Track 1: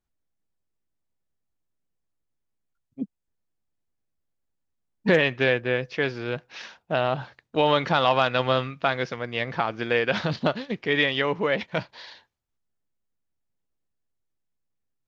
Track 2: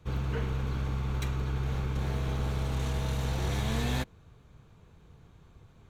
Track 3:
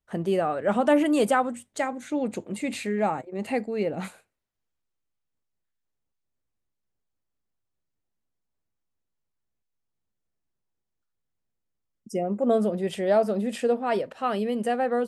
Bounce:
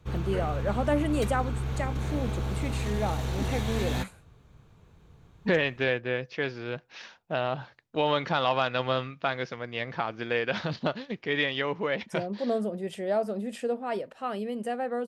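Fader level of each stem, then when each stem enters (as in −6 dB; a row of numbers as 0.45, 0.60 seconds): −5.0, 0.0, −6.0 decibels; 0.40, 0.00, 0.00 seconds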